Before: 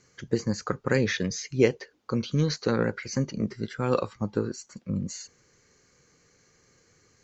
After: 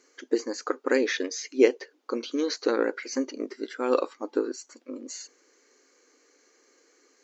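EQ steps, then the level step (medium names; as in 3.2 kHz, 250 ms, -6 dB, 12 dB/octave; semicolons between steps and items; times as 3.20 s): brick-wall FIR high-pass 250 Hz; bass shelf 340 Hz +6.5 dB; 0.0 dB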